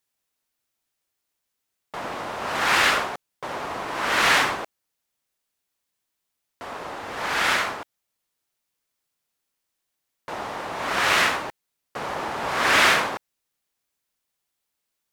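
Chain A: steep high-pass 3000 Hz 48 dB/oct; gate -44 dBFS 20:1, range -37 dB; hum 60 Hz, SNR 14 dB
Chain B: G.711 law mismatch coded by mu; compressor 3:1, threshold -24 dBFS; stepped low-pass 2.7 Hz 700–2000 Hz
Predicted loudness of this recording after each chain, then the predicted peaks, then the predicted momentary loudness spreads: -29.0, -22.5 LUFS; -13.0, -7.0 dBFS; 19, 13 LU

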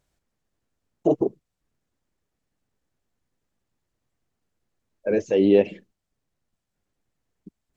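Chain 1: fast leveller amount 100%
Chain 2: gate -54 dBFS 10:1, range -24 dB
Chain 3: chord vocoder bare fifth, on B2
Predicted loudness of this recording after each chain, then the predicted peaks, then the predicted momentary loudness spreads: -17.0, -22.5, -23.0 LUFS; -3.0, -5.0, -5.5 dBFS; 12, 11, 15 LU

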